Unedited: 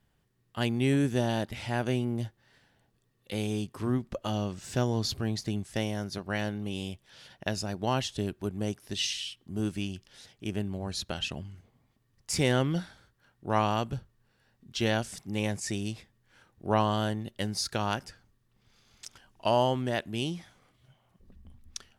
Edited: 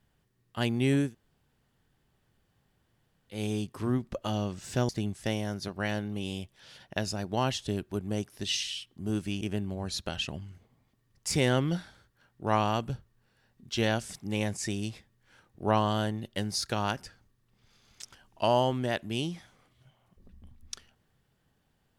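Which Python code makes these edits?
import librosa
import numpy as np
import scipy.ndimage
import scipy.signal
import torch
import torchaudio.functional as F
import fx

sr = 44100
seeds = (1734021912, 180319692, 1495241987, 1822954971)

y = fx.edit(x, sr, fx.room_tone_fill(start_s=1.07, length_s=2.29, crossfade_s=0.16),
    fx.cut(start_s=4.89, length_s=0.5),
    fx.cut(start_s=9.91, length_s=0.53), tone=tone)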